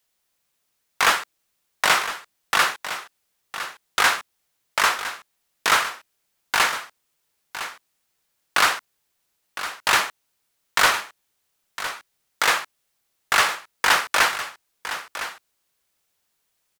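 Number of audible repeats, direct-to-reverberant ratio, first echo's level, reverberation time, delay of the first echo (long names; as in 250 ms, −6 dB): 1, no reverb audible, −12.0 dB, no reverb audible, 1,009 ms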